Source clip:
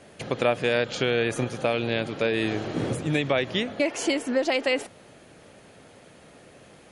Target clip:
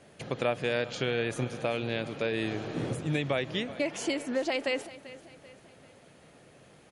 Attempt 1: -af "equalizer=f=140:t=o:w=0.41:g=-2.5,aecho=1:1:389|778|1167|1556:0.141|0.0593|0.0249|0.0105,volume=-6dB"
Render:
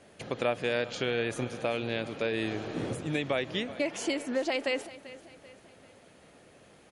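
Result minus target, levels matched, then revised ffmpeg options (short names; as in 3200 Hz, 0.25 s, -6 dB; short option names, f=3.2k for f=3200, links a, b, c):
125 Hz band -3.5 dB
-af "equalizer=f=140:t=o:w=0.41:g=4,aecho=1:1:389|778|1167|1556:0.141|0.0593|0.0249|0.0105,volume=-6dB"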